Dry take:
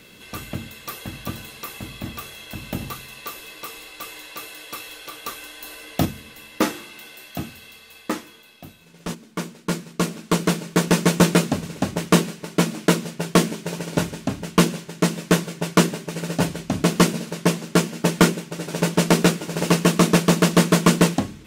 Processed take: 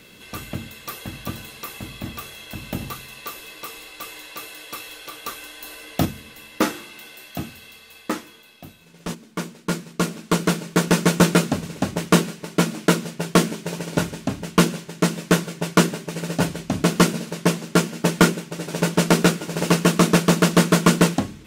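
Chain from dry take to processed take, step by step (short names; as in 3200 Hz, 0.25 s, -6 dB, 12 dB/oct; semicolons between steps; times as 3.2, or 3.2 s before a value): dynamic EQ 1400 Hz, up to +4 dB, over -40 dBFS, Q 6.8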